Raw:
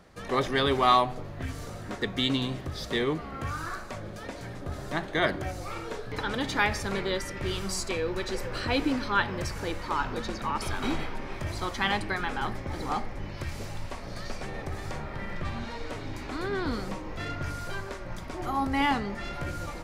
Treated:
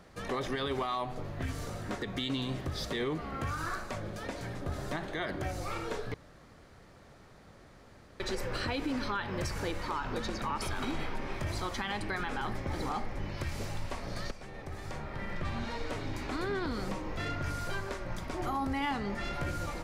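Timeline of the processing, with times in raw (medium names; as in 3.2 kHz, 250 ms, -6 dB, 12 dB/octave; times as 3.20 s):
6.14–8.20 s: room tone
14.31–15.68 s: fade in, from -12 dB
whole clip: compression 2.5:1, threshold -29 dBFS; peak limiter -24.5 dBFS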